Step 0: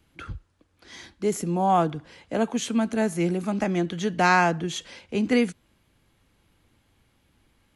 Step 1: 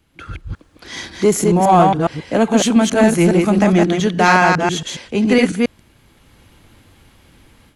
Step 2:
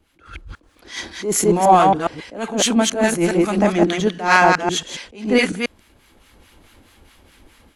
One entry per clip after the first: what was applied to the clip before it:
delay that plays each chunk backwards 138 ms, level −2.5 dB; automatic gain control gain up to 11.5 dB; in parallel at −5.5 dB: soft clipping −16 dBFS, distortion −8 dB; on the sum: level −1 dB
parametric band 130 Hz −11 dB 1 octave; two-band tremolo in antiphase 4.7 Hz, depth 70%, crossover 1,000 Hz; level that may rise only so fast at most 140 dB per second; level +3.5 dB

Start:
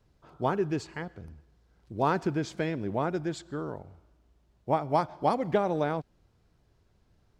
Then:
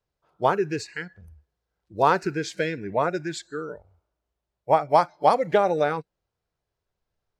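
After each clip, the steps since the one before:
drawn EQ curve 180 Hz 0 dB, 260 Hz −3 dB, 490 Hz +8 dB
noise reduction from a noise print of the clip's start 19 dB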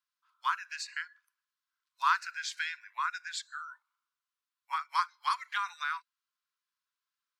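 Chebyshev high-pass with heavy ripple 1,000 Hz, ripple 3 dB
level −1 dB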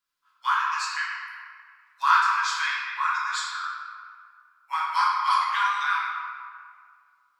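convolution reverb RT60 2.2 s, pre-delay 6 ms, DRR −7 dB
level +2 dB

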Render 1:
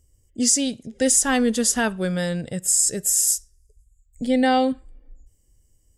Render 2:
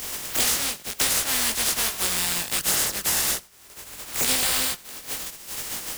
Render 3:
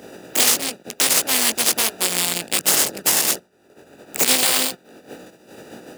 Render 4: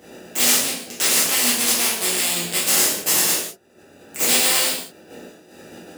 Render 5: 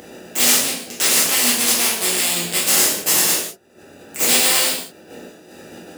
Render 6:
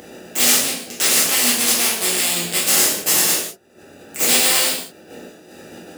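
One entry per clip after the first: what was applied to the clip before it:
compressing power law on the bin magnitudes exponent 0.1; multi-voice chorus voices 2, 0.89 Hz, delay 19 ms, depth 3.2 ms; multiband upward and downward compressor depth 100%
adaptive Wiener filter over 41 samples; high-pass filter 230 Hz 12 dB per octave; boost into a limiter +11 dB; level −1 dB
reverb whose tail is shaped and stops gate 220 ms falling, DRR −7 dB; level −8 dB
upward compression, threshold −39 dBFS; level +2 dB
notch filter 980 Hz, Q 25

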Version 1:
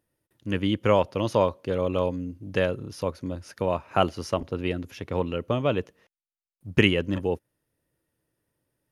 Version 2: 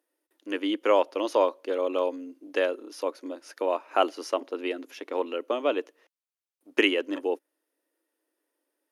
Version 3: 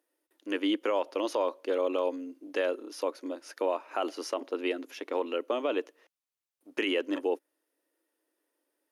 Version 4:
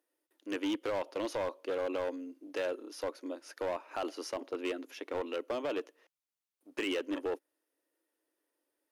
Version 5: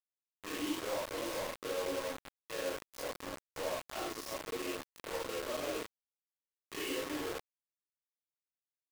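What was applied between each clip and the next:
elliptic high-pass filter 290 Hz, stop band 50 dB
brickwall limiter −19 dBFS, peak gain reduction 11 dB
gain into a clipping stage and back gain 25.5 dB; level −3.5 dB
random phases in long frames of 200 ms; steady tone 1,100 Hz −48 dBFS; bit-depth reduction 6 bits, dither none; level −4 dB

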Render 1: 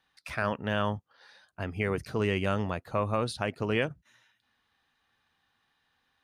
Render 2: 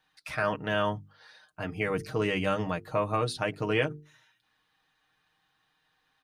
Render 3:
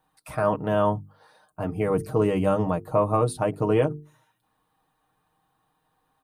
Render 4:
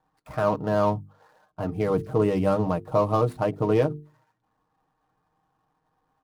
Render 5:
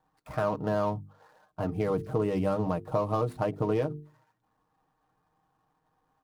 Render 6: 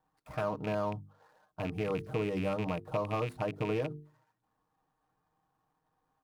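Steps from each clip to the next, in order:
mains-hum notches 50/100/150/200/250/300/350/400/450 Hz; comb filter 6.5 ms, depth 67%
flat-topped bell 3,100 Hz −14.5 dB 2.4 octaves; level +7 dB
running median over 15 samples
downward compressor 3 to 1, threshold −24 dBFS, peak gain reduction 7 dB; level −1 dB
loose part that buzzes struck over −31 dBFS, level −26 dBFS; level −5 dB

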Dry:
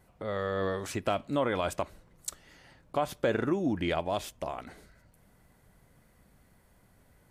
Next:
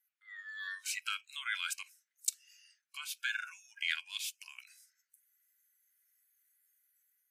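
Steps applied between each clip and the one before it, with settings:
noise reduction from a noise print of the clip's start 19 dB
automatic gain control gain up to 4 dB
Butterworth high-pass 1,500 Hz 48 dB per octave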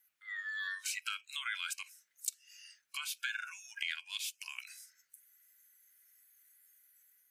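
downward compressor 3 to 1, threshold −47 dBFS, peak gain reduction 15 dB
level +8.5 dB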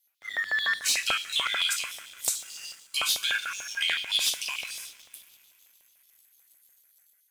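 coupled-rooms reverb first 0.32 s, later 3.8 s, from −21 dB, DRR 0.5 dB
auto-filter high-pass square 6.8 Hz 660–3,800 Hz
leveller curve on the samples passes 2
level +2.5 dB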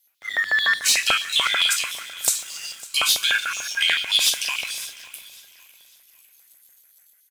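repeating echo 553 ms, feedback 34%, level −19.5 dB
level +7 dB

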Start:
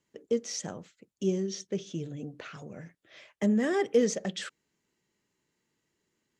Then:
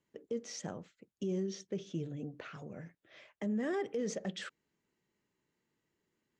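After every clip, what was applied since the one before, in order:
high-shelf EQ 4,100 Hz −9.5 dB
brickwall limiter −25.5 dBFS, peak gain reduction 12 dB
level −2.5 dB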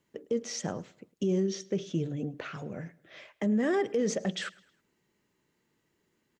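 repeating echo 106 ms, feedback 43%, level −23 dB
level +7.5 dB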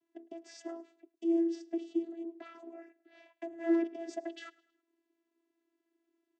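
channel vocoder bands 16, saw 334 Hz
level −3.5 dB

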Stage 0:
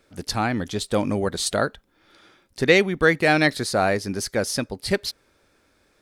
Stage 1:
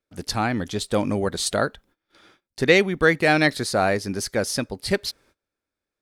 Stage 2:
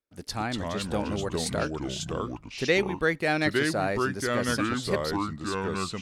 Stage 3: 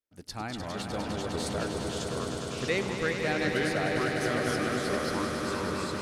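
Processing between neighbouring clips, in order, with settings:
noise gate −54 dBFS, range −24 dB
delay with pitch and tempo change per echo 163 ms, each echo −4 semitones, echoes 2; level −7.5 dB
echo that builds up and dies away 101 ms, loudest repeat 5, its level −8 dB; level −6 dB

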